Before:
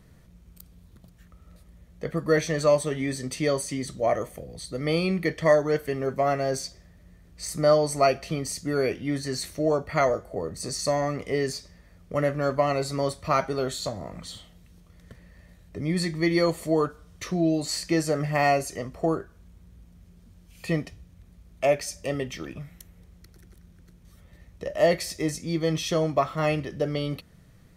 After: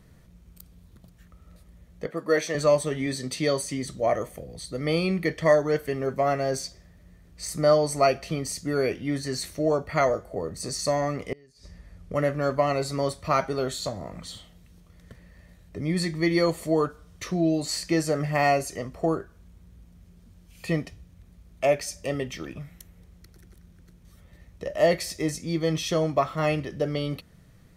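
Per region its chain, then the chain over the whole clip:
2.06–2.55 HPF 290 Hz + mismatched tape noise reduction decoder only
3.06–3.62 HPF 87 Hz + bell 4000 Hz +6.5 dB 0.43 oct
11.32–12.14 low shelf 130 Hz +9 dB + flipped gate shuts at -21 dBFS, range -30 dB + brick-wall FIR low-pass 13000 Hz
whole clip: dry

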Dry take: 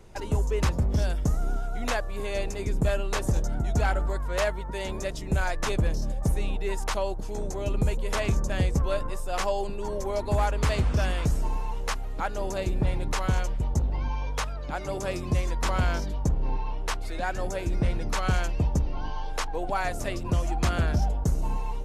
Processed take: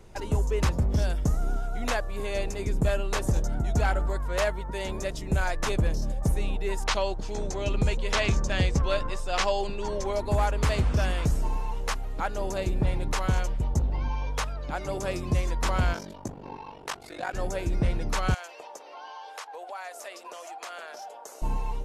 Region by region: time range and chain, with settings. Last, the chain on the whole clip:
6.85–10.13 LPF 4600 Hz + high shelf 2200 Hz +11.5 dB
15.93–17.34 HPF 170 Hz + ring modulator 24 Hz
18.34–21.42 HPF 520 Hz 24 dB/oct + compressor 2.5:1, threshold -39 dBFS
whole clip: dry

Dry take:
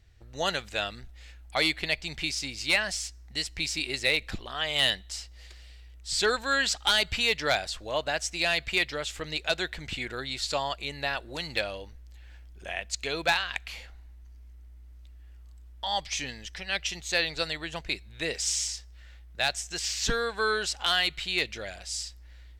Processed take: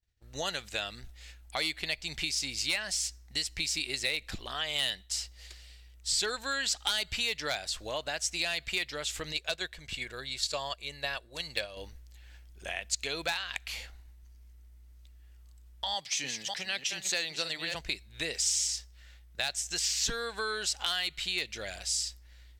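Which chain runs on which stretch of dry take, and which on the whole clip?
9.32–11.77 gate -33 dBFS, range -7 dB + comb 1.8 ms, depth 30%
15.94–17.75 reverse delay 0.3 s, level -8.5 dB + HPF 120 Hz 24 dB/oct
whole clip: compressor 2.5:1, threshold -36 dBFS; expander -44 dBFS; high shelf 3500 Hz +9 dB

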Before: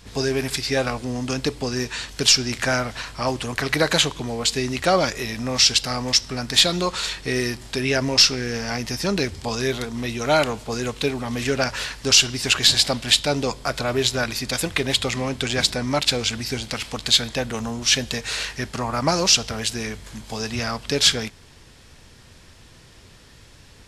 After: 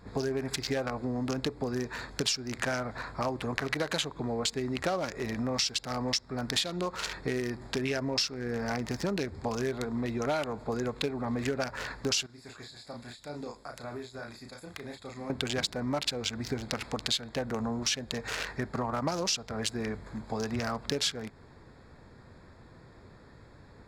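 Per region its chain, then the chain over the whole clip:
12.26–15.3 pre-emphasis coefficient 0.8 + compressor 8:1, threshold -32 dBFS + doubler 34 ms -4 dB
whole clip: Wiener smoothing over 15 samples; low shelf 76 Hz -10 dB; compressor 6:1, threshold -28 dBFS

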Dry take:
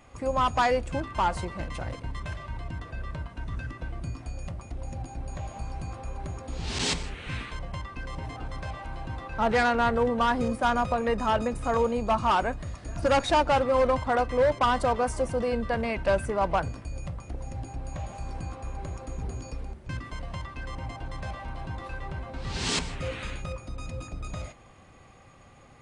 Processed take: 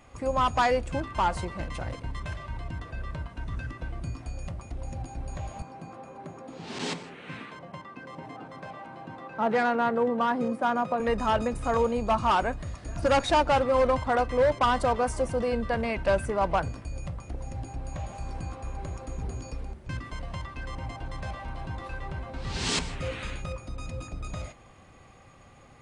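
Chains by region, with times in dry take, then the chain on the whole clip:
5.62–11 HPF 160 Hz 24 dB/oct + high shelf 2500 Hz -11 dB
whole clip: dry

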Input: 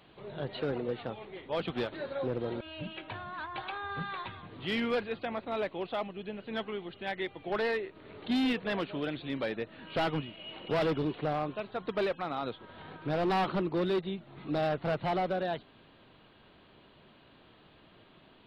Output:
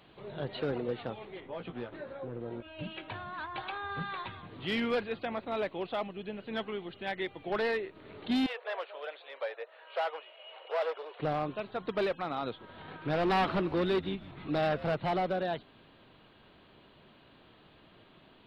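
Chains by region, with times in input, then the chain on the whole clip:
1.4–2.79 compressor 2:1, threshold -43 dBFS + Gaussian blur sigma 2.6 samples + doubler 17 ms -6 dB
8.46–11.2 steep high-pass 480 Hz 48 dB/oct + high shelf 2700 Hz -11 dB
12.88–14.85 bell 2000 Hz +3.5 dB 1.8 oct + frequency-shifting echo 0.16 s, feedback 45%, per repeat -100 Hz, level -17 dB
whole clip: dry

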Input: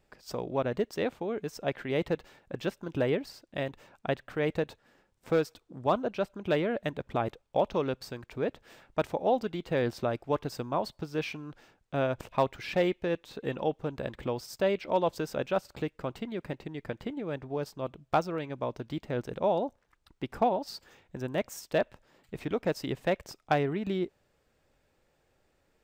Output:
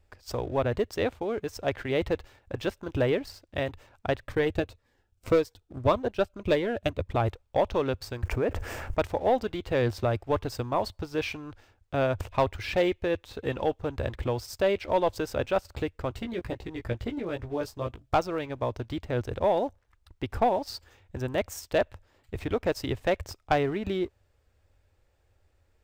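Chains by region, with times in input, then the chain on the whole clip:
4.21–7.1 transient shaper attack +6 dB, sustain -3 dB + cascading phaser falling 1.8 Hz
8.23–8.99 bell 3800 Hz -12 dB 0.61 oct + fast leveller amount 50%
16.12–18.15 LFO notch saw up 9.4 Hz 430–3600 Hz + doubler 17 ms -5 dB
whole clip: sample leveller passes 1; resonant low shelf 120 Hz +9 dB, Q 3

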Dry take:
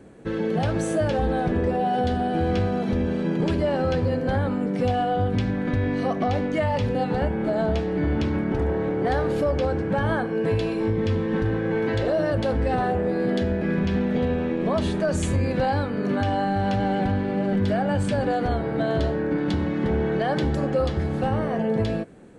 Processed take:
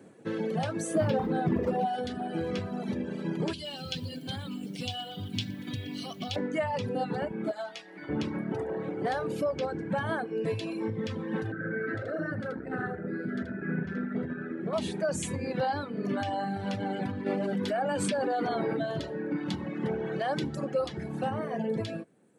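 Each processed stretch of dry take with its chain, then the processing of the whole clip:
0.95–1.86 low shelf 330 Hz +9 dB + hard clip -13.5 dBFS
3.53–6.36 EQ curve 110 Hz 0 dB, 340 Hz -6 dB, 510 Hz -14 dB, 800 Hz -10 dB, 1900 Hz -8 dB, 3100 Hz +11 dB, 6900 Hz +6 dB + lo-fi delay 0.119 s, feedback 80%, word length 8-bit, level -14.5 dB
7.51–8.09 HPF 1200 Hz 6 dB/oct + doubler 15 ms -6.5 dB
11.52–14.73 EQ curve 360 Hz 0 dB, 1000 Hz -15 dB, 1400 Hz +9 dB, 2800 Hz -15 dB + echo 80 ms -4 dB + core saturation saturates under 190 Hz
17.26–18.79 HPF 190 Hz + fast leveller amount 100%
whole clip: HPF 120 Hz 24 dB/oct; high shelf 7300 Hz +7 dB; reverb removal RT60 1.7 s; gain -4.5 dB

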